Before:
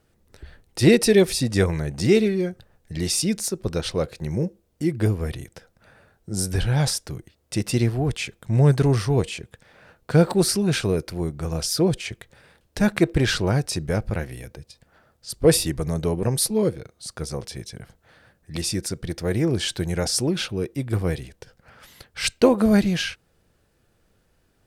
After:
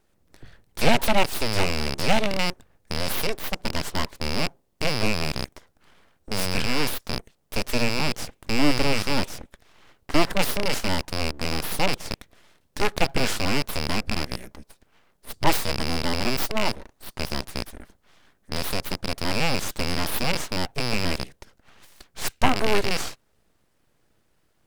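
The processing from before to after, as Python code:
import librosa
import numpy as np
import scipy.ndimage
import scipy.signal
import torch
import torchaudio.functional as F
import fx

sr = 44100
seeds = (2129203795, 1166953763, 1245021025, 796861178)

y = fx.rattle_buzz(x, sr, strikes_db=-31.0, level_db=-10.0)
y = np.abs(y)
y = F.gain(torch.from_numpy(y), -1.0).numpy()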